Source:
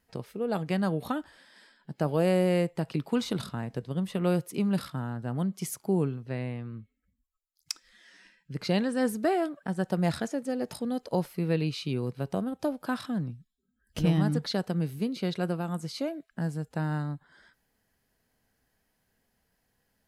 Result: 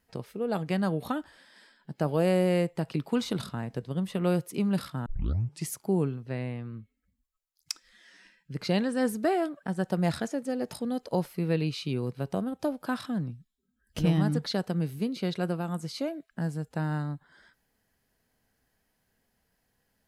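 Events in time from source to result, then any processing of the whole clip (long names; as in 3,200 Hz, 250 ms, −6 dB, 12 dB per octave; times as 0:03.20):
0:05.06: tape start 0.62 s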